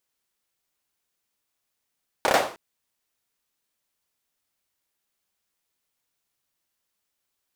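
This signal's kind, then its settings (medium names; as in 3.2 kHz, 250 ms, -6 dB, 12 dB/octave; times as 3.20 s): hand clap length 0.31 s, apart 30 ms, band 650 Hz, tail 0.42 s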